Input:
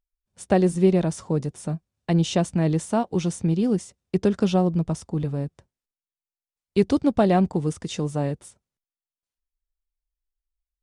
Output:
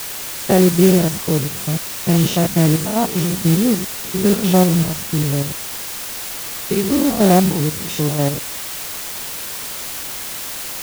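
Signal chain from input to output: stepped spectrum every 0.1 s; modulation noise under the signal 14 dB; requantised 6-bit, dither triangular; gain +8 dB

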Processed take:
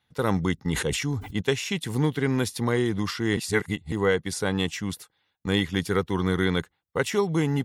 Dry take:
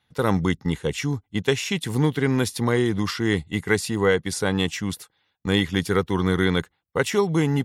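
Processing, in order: 0.56–1.41 sustainer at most 45 dB/s; 3.37–3.92 reverse; gain -3 dB

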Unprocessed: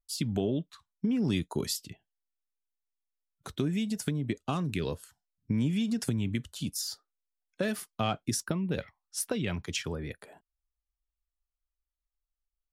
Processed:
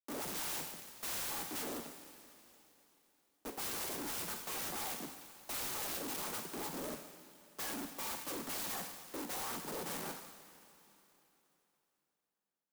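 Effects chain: spectrum mirrored in octaves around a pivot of 1700 Hz; Schmitt trigger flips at -39.5 dBFS; steep high-pass 150 Hz 96 dB/oct; high shelf 4400 Hz +9.5 dB; on a send at -9 dB: reverb, pre-delay 3 ms; on the sum: soft clip -38 dBFS, distortion -5 dB; bell 220 Hz -3.5 dB 2 oct; clock jitter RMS 0.092 ms; gain +2 dB

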